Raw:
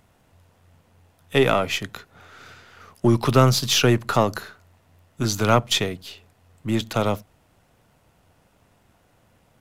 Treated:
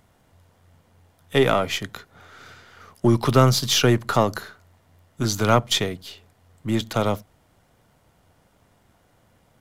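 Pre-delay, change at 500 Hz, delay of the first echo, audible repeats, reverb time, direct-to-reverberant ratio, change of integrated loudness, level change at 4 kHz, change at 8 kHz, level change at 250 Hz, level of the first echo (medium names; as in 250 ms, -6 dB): no reverb, 0.0 dB, no echo, no echo, no reverb, no reverb, 0.0 dB, 0.0 dB, 0.0 dB, 0.0 dB, no echo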